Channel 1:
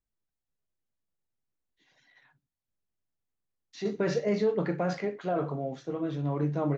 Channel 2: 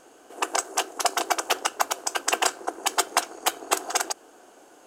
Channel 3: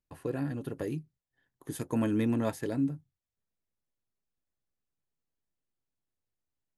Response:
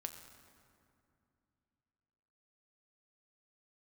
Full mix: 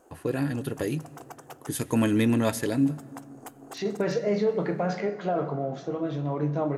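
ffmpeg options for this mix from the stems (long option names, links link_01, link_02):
-filter_complex "[0:a]equalizer=frequency=710:width_type=o:width=0.77:gain=3.5,volume=3dB,asplit=2[link_01][link_02];[link_02]volume=-3.5dB[link_03];[1:a]equalizer=frequency=3600:width_type=o:width=2.4:gain=-14.5,acompressor=threshold=-38dB:ratio=6,volume=-5.5dB,asplit=3[link_04][link_05][link_06];[link_04]atrim=end=1.75,asetpts=PTS-STARTPTS,afade=type=out:start_time=1.746:duration=0.004:curve=hsin[link_07];[link_05]atrim=start=1.75:end=2.62,asetpts=PTS-STARTPTS,volume=0[link_08];[link_06]atrim=start=2.62,asetpts=PTS-STARTPTS,afade=type=in:duration=0.004:curve=hsin[link_09];[link_07][link_08][link_09]concat=n=3:v=0:a=1,asplit=2[link_10][link_11];[link_11]volume=-7.5dB[link_12];[2:a]adynamicequalizer=threshold=0.00251:dfrequency=1800:dqfactor=0.7:tfrequency=1800:tqfactor=0.7:attack=5:release=100:ratio=0.375:range=3.5:mode=boostabove:tftype=highshelf,volume=3dB,asplit=3[link_13][link_14][link_15];[link_14]volume=-6dB[link_16];[link_15]apad=whole_len=214629[link_17];[link_10][link_17]sidechaincompress=threshold=-45dB:ratio=8:attack=16:release=135[link_18];[link_01][link_18]amix=inputs=2:normalize=0,acompressor=threshold=-36dB:ratio=2.5,volume=0dB[link_19];[3:a]atrim=start_sample=2205[link_20];[link_03][link_12][link_16]amix=inputs=3:normalize=0[link_21];[link_21][link_20]afir=irnorm=-1:irlink=0[link_22];[link_13][link_19][link_22]amix=inputs=3:normalize=0"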